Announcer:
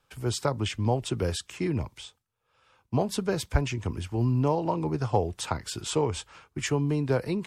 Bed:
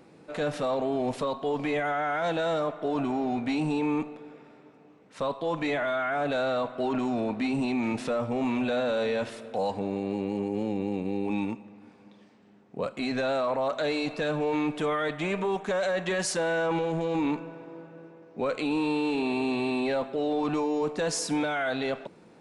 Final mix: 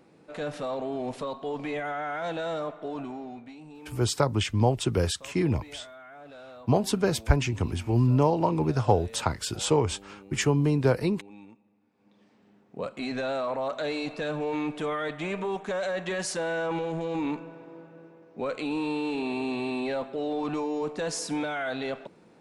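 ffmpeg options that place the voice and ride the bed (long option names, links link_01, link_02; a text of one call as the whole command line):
ffmpeg -i stem1.wav -i stem2.wav -filter_complex "[0:a]adelay=3750,volume=3dB[link_01];[1:a]volume=12.5dB,afade=type=out:start_time=2.67:duration=0.88:silence=0.177828,afade=type=in:start_time=11.92:duration=0.48:silence=0.149624[link_02];[link_01][link_02]amix=inputs=2:normalize=0" out.wav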